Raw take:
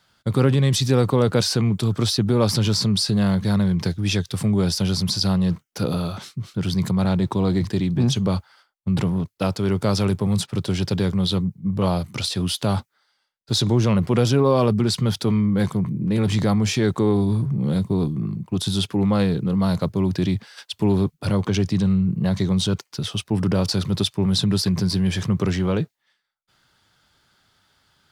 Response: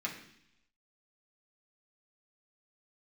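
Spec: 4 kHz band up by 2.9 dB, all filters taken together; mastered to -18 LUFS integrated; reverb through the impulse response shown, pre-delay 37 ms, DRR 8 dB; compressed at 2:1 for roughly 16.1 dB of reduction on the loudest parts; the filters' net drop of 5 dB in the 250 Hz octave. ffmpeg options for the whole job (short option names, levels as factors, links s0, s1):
-filter_complex "[0:a]equalizer=f=250:t=o:g=-7.5,equalizer=f=4000:t=o:g=3.5,acompressor=threshold=0.00501:ratio=2,asplit=2[s0][s1];[1:a]atrim=start_sample=2205,adelay=37[s2];[s1][s2]afir=irnorm=-1:irlink=0,volume=0.282[s3];[s0][s3]amix=inputs=2:normalize=0,volume=8.41"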